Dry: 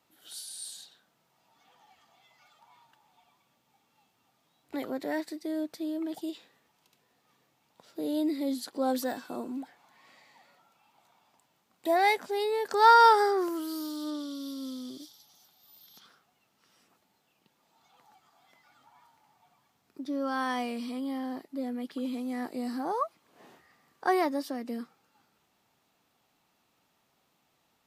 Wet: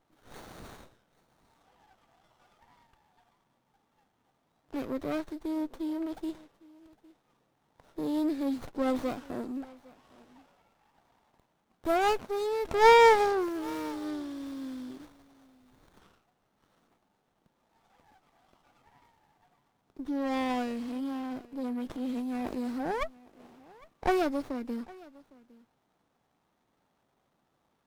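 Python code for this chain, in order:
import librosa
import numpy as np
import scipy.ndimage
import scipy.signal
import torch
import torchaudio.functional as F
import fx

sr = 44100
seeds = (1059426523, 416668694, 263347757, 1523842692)

y = fx.transient(x, sr, attack_db=-4, sustain_db=10, at=(21.51, 22.54), fade=0.02)
y = y + 10.0 ** (-22.5 / 20.0) * np.pad(y, (int(808 * sr / 1000.0), 0))[:len(y)]
y = fx.running_max(y, sr, window=17)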